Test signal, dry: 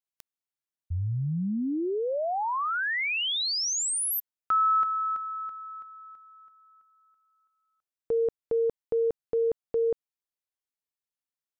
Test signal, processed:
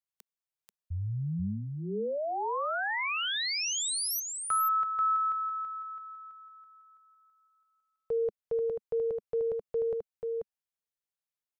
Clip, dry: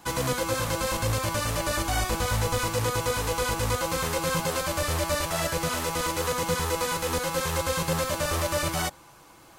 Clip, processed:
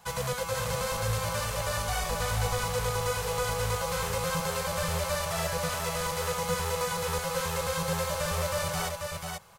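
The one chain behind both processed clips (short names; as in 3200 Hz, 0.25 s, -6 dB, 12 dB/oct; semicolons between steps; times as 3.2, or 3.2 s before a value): Chebyshev band-stop 200–430 Hz, order 2; echo 0.487 s -4.5 dB; gain -3.5 dB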